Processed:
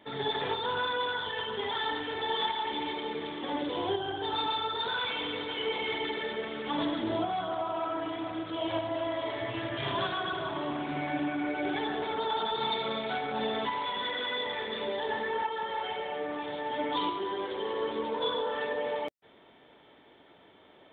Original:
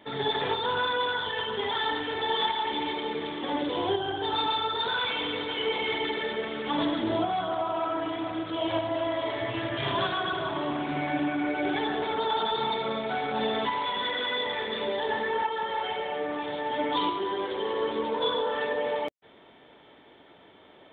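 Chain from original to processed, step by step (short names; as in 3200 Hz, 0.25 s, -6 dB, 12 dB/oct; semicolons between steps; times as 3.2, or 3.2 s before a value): 12.6–13.17 high shelf 3800 Hz -> 3200 Hz +10 dB; gain -3.5 dB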